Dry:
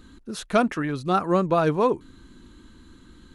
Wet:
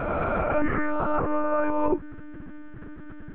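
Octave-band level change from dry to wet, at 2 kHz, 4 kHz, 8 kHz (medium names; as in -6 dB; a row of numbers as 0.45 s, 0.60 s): +1.5 dB, under -15 dB, no reading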